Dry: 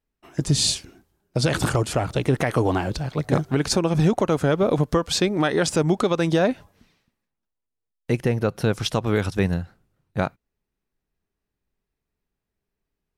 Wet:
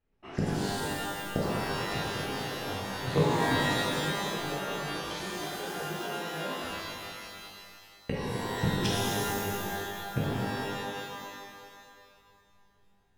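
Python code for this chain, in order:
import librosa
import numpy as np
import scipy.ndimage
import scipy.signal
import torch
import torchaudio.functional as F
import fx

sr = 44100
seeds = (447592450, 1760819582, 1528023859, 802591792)

y = fx.gate_flip(x, sr, shuts_db=-17.0, range_db=-26)
y = fx.env_lowpass(y, sr, base_hz=2700.0, full_db=-35.0)
y = fx.rev_shimmer(y, sr, seeds[0], rt60_s=2.1, semitones=12, shimmer_db=-2, drr_db=-7.0)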